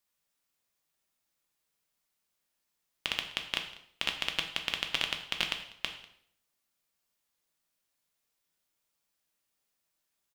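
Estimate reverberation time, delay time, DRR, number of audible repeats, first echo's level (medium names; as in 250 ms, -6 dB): 0.65 s, 195 ms, 4.0 dB, 1, -22.0 dB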